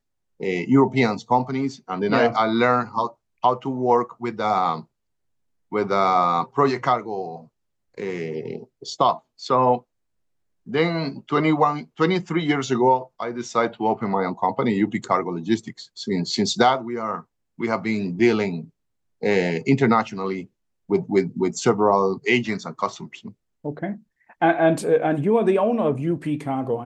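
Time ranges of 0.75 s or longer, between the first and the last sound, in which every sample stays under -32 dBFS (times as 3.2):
4.81–5.72
9.78–10.68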